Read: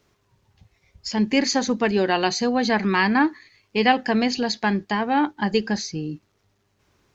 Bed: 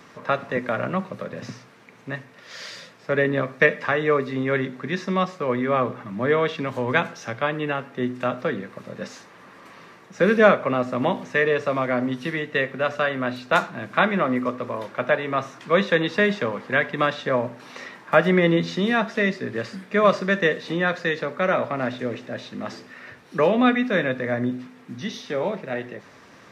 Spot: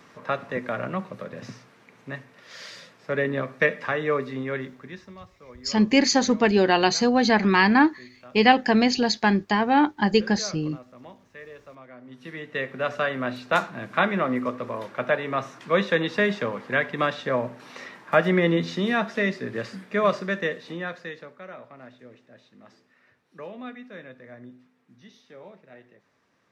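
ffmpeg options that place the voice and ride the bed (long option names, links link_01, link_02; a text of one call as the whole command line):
ffmpeg -i stem1.wav -i stem2.wav -filter_complex "[0:a]adelay=4600,volume=1.5dB[link_01];[1:a]volume=16.5dB,afade=type=out:start_time=4.23:duration=0.94:silence=0.112202,afade=type=in:start_time=12.04:duration=0.89:silence=0.0944061,afade=type=out:start_time=19.7:duration=1.74:silence=0.133352[link_02];[link_01][link_02]amix=inputs=2:normalize=0" out.wav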